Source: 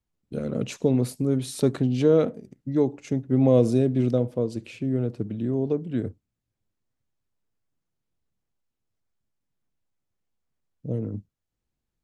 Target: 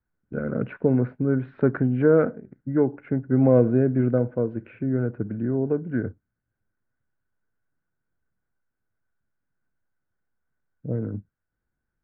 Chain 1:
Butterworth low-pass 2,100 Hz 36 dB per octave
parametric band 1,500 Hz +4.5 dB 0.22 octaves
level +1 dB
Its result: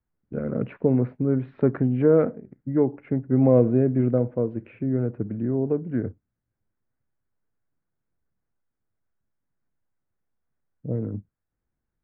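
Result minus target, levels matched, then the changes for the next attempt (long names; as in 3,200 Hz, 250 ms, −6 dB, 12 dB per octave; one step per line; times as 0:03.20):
2,000 Hz band −7.5 dB
change: parametric band 1,500 Hz +16 dB 0.22 octaves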